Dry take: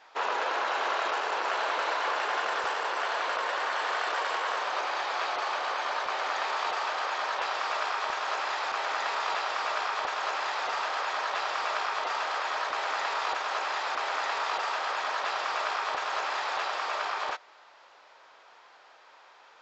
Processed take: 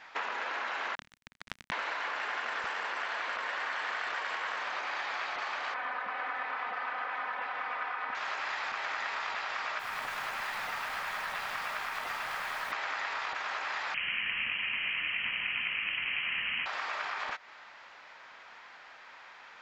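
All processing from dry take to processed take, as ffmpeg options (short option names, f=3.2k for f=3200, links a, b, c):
-filter_complex "[0:a]asettb=1/sr,asplit=3[a][b][c];[a]atrim=end=0.954[d];[b]atrim=start=0.95:end=1.72,asetpts=PTS-STARTPTS,afade=t=in:d=0.004:c=qsin,afade=t=out:st=0.766:d=0.004:c=qsin,highshelf=f=6.7k:g=-11.5,acrusher=bits=2:mix=0:aa=0.5[e];[c]atrim=start=1.716[f];[d][e]acrossfade=d=0.004:c1=hsin:c2=qsin[g];[g][f]acrossfade=d=0.004:c1=qsin:c2=hsin,asettb=1/sr,asplit=3[h][i][j];[h]atrim=end=5.744[k];[i]atrim=start=5.74:end=8.15,asetpts=PTS-STARTPTS,afade=t=in:d=0.004:c=qsin,afade=t=out:st=2.406:d=0.004:c=qsin,highpass=110,lowpass=2k,aecho=1:1:4:0.71,atrim=end_sample=106281[l];[j]atrim=start=8.146[m];[k][l]acrossfade=d=0.004:c1=hsin:c2=qsin[n];[n][m]acrossfade=d=0.004:c1=qsin:c2=hsin,asettb=1/sr,asplit=3[o][p][q];[o]atrim=end=9.794[r];[p]atrim=start=9.79:end=12.72,asetpts=PTS-STARTPTS,afade=t=in:d=0.004:c=qsin,afade=t=out:st=2.926:d=0.004:c=qsin,flanger=delay=4.9:depth=2.2:regen=-79:speed=1.5:shape=sinusoidal,acrusher=bits=8:dc=4:mix=0:aa=0.000001[s];[q]atrim=start=12.716[t];[r][s]acrossfade=d=0.004:c1=hsin:c2=qsin[u];[u][t]acrossfade=d=0.004:c1=qsin:c2=hsin,asettb=1/sr,asplit=3[v][w][x];[v]atrim=end=13.944[y];[w]atrim=start=13.94:end=16.66,asetpts=PTS-STARTPTS,afade=t=in:d=0.004:c=qsin,afade=t=out:st=2.716:d=0.004:c=qsin,highpass=f=460:w=0.5412,highpass=f=460:w=1.3066,lowpass=f=3.1k:t=q:w=0.5098,lowpass=f=3.1k:t=q:w=0.6013,lowpass=f=3.1k:t=q:w=0.9,lowpass=f=3.1k:t=q:w=2.563,afreqshift=-3700[z];[x]atrim=start=16.656[aa];[y][z]acrossfade=d=0.004:c1=hsin:c2=qsin[ab];[ab][aa]acrossfade=d=0.004:c1=qsin:c2=hsin,lowshelf=f=290:t=q:w=1.5:g=8.5,acompressor=threshold=-37dB:ratio=6,equalizer=f=2k:t=o:w=1.1:g=9"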